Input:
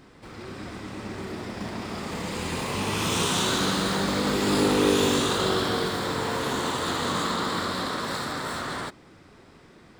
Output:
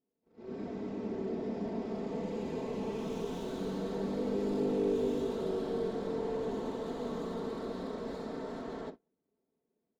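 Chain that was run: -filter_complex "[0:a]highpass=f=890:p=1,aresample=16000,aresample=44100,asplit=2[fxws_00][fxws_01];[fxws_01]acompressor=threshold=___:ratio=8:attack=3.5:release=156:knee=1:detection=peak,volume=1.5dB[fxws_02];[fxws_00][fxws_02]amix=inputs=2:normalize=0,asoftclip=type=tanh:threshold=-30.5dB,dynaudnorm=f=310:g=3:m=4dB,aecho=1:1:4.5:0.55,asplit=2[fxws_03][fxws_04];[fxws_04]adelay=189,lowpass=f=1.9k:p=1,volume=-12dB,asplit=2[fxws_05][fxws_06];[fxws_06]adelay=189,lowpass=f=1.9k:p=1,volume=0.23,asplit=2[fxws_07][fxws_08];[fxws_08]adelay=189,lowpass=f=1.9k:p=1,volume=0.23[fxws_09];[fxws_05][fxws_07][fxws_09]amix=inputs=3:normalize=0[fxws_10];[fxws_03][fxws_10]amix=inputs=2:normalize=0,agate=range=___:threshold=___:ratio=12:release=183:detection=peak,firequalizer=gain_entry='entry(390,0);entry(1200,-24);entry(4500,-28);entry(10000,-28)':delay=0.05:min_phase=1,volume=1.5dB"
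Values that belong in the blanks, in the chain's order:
-41dB, -32dB, -36dB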